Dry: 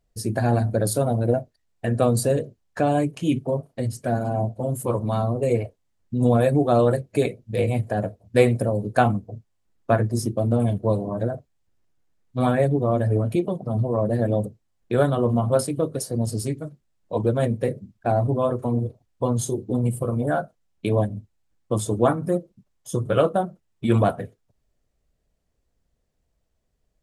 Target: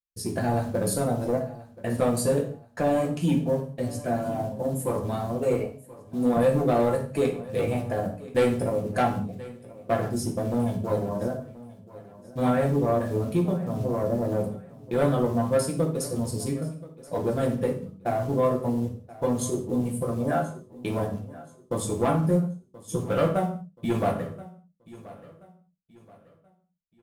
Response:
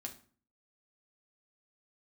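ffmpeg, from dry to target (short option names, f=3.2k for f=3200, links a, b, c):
-filter_complex "[0:a]asettb=1/sr,asplit=3[a][b][c];[a]atrim=end=5.544[d];[b]atrim=start=5.54:end=6.37,asetpts=PTS-STARTPTS,afade=t=in:d=0.004:c=qsin,afade=t=out:st=0.826:d=0.004:c=qsin,highpass=190[e];[c]atrim=start=6.366[f];[d][e]acrossfade=d=0.004:c1=hsin:c2=qsin[g];[g][f]acrossfade=d=0.004:c1=qsin:c2=hsin,agate=range=-33dB:threshold=-39dB:ratio=3:detection=peak,asettb=1/sr,asplit=3[h][i][j];[h]atrim=end=13.784[k];[i]atrim=start=13.78:end=14.43,asetpts=PTS-STARTPTS,afade=t=in:d=0.004:c=qsin,afade=t=out:st=0.646:d=0.004:c=qsin,lowpass=f=1.2k:w=0.5412,lowpass=f=1.2k:w=1.3066[l];[j]atrim=start=14.426[m];[k][l]acrossfade=d=0.004:c1=hsin:c2=qsin[n];[n][m]acrossfade=d=0.004:c1=qsin:c2=hsin,acrusher=bits=7:mode=log:mix=0:aa=0.000001,asoftclip=type=tanh:threshold=-14.5dB,aecho=1:1:1029|2058|3087:0.112|0.0404|0.0145[o];[1:a]atrim=start_sample=2205,atrim=end_sample=6615,asetrate=31752,aresample=44100[p];[o][p]afir=irnorm=-1:irlink=0"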